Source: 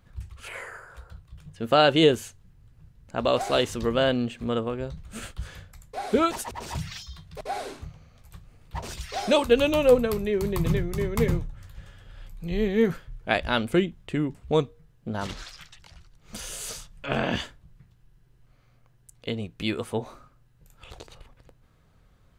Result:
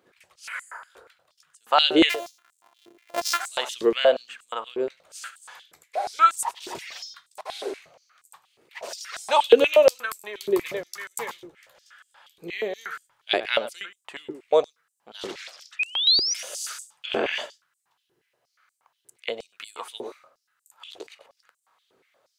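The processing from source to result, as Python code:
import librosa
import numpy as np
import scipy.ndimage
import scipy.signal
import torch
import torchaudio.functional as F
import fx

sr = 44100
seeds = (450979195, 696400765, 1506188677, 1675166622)

p1 = fx.sample_sort(x, sr, block=128, at=(2.09, 3.38), fade=0.02)
p2 = fx.spec_paint(p1, sr, seeds[0], shape='rise', start_s=15.79, length_s=0.55, low_hz=2400.0, high_hz=6000.0, level_db=-24.0)
p3 = p2 + fx.echo_single(p2, sr, ms=99, db=-16.5, dry=0)
p4 = fx.filter_held_highpass(p3, sr, hz=8.4, low_hz=380.0, high_hz=8000.0)
y = p4 * librosa.db_to_amplitude(-1.0)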